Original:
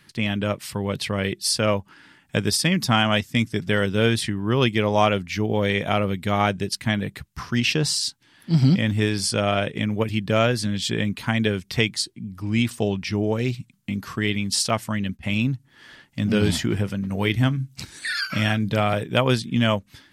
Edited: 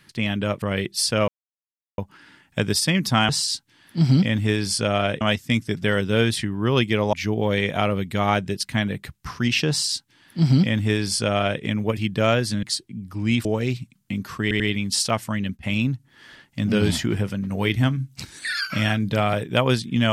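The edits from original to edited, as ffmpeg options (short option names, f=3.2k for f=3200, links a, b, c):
-filter_complex "[0:a]asplit=10[a][b][c][d][e][f][g][h][i][j];[a]atrim=end=0.622[k];[b]atrim=start=1.088:end=1.75,asetpts=PTS-STARTPTS,afade=t=out:st=0.658:d=0.004:c=hsin,apad=pad_dur=0.7[l];[c]atrim=start=1.75:end=3.062,asetpts=PTS-STARTPTS,afade=t=in:d=0.004:c=hsin[m];[d]atrim=start=7.818:end=9.742[n];[e]atrim=start=3.058:end=4.982[o];[f]atrim=start=5.248:end=10.752[p];[g]atrim=start=11.898:end=12.722[q];[h]atrim=start=13.228:end=14.292[r];[i]atrim=start=14.198:end=14.292[s];[j]atrim=start=14.198[t];[l][m]concat=n=2:v=0:a=1[u];[k][u]acrossfade=d=0.004:c1=hsin:c2=hsin[v];[v][n]acrossfade=d=0.004:c1=hsin:c2=hsin[w];[w][o]acrossfade=d=0.004:c1=hsin:c2=hsin[x];[x][p]acrossfade=d=0.004:c1=hsin:c2=hsin[y];[y][q]acrossfade=d=0.004:c1=hsin:c2=hsin[z];[z][r]acrossfade=d=0.004:c1=hsin:c2=hsin[aa];[aa][s]acrossfade=d=0.004:c1=hsin:c2=hsin[ab];[ab][t]acrossfade=d=0.004:c1=hsin:c2=hsin"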